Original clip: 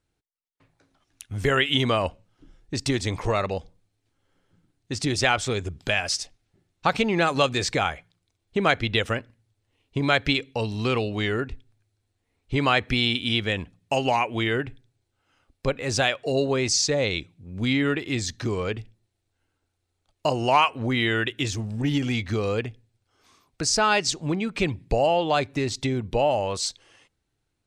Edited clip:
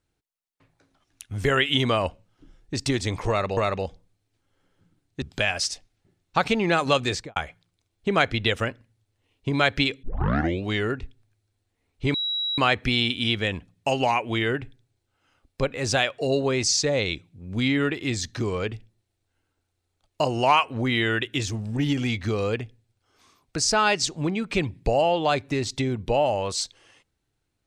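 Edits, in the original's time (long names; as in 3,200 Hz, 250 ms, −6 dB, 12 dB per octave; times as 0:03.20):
0:03.29–0:03.57: repeat, 2 plays
0:04.94–0:05.71: remove
0:07.58–0:07.85: fade out and dull
0:10.52: tape start 0.61 s
0:12.63: insert tone 3,880 Hz −24 dBFS 0.44 s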